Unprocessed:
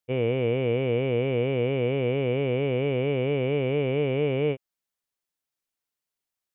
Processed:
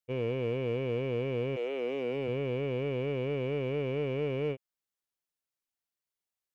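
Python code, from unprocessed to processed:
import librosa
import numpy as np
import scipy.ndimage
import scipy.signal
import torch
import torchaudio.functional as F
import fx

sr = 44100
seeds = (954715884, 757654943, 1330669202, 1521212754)

p1 = fx.highpass(x, sr, hz=fx.line((1.55, 410.0), (2.27, 130.0)), slope=24, at=(1.55, 2.27), fade=0.02)
p2 = np.clip(p1, -10.0 ** (-30.0 / 20.0), 10.0 ** (-30.0 / 20.0))
p3 = p1 + F.gain(torch.from_numpy(p2), -7.5).numpy()
y = F.gain(torch.from_numpy(p3), -8.5).numpy()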